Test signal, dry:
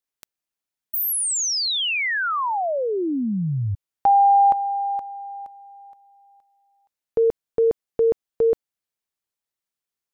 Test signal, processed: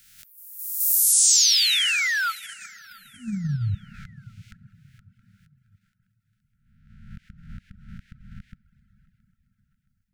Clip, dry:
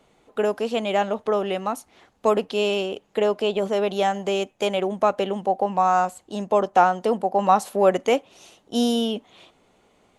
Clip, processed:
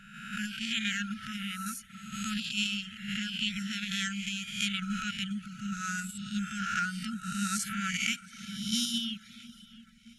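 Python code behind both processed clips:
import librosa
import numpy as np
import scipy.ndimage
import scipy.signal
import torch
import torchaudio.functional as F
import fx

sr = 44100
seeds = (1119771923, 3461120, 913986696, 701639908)

p1 = fx.spec_swells(x, sr, rise_s=1.17)
p2 = fx.low_shelf(p1, sr, hz=99.0, db=8.5)
p3 = p2 + fx.echo_feedback(p2, sr, ms=671, feedback_pct=47, wet_db=-21.5, dry=0)
p4 = fx.rev_plate(p3, sr, seeds[0], rt60_s=4.3, hf_ratio=0.6, predelay_ms=0, drr_db=11.5)
p5 = fx.dereverb_blind(p4, sr, rt60_s=0.59)
p6 = fx.level_steps(p5, sr, step_db=11)
p7 = p5 + (p6 * 10.0 ** (1.0 / 20.0))
p8 = fx.dynamic_eq(p7, sr, hz=6400.0, q=0.78, threshold_db=-33.0, ratio=4.0, max_db=6)
p9 = fx.brickwall_bandstop(p8, sr, low_hz=230.0, high_hz=1300.0)
y = p9 * 10.0 ** (-9.0 / 20.0)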